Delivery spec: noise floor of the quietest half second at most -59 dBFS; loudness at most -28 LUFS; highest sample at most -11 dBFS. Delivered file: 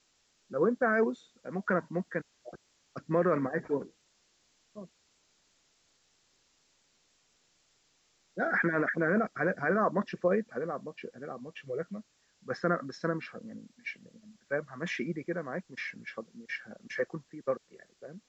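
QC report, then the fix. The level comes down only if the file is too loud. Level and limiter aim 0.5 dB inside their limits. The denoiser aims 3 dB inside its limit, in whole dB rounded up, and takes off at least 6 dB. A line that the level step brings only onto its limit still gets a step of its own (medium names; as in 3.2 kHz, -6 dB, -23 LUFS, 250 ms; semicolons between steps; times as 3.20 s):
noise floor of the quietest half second -71 dBFS: pass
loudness -33.0 LUFS: pass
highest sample -15.0 dBFS: pass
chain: none needed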